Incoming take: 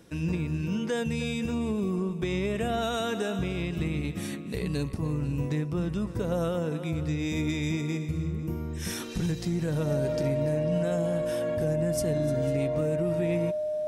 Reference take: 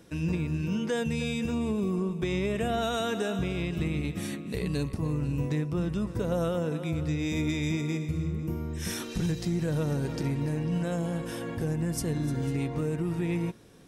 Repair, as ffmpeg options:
ffmpeg -i in.wav -af "bandreject=frequency=610:width=30" out.wav

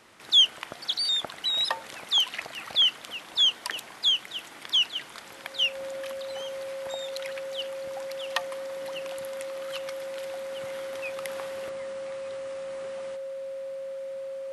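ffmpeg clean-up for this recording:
ffmpeg -i in.wav -af "bandreject=frequency=540:width=30" out.wav

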